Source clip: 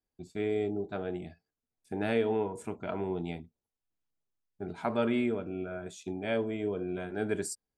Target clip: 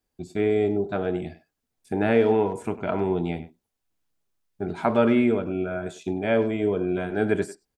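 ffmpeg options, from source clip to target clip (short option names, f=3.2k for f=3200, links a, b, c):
-filter_complex "[0:a]acrossover=split=2700[a][b];[b]acompressor=threshold=-54dB:ratio=4:attack=1:release=60[c];[a][c]amix=inputs=2:normalize=0,asplit=2[d][e];[e]adelay=100,highpass=300,lowpass=3.4k,asoftclip=type=hard:threshold=-25dB,volume=-14dB[f];[d][f]amix=inputs=2:normalize=0,volume=9dB"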